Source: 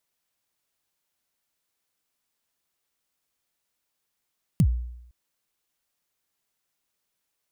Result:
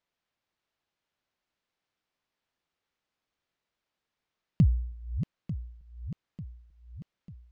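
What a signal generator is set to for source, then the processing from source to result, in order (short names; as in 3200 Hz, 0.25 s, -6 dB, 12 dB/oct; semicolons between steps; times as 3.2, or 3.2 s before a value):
kick drum length 0.51 s, from 200 Hz, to 60 Hz, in 69 ms, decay 0.80 s, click on, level -13 dB
regenerating reverse delay 0.447 s, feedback 69%, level -10 dB; air absorption 170 m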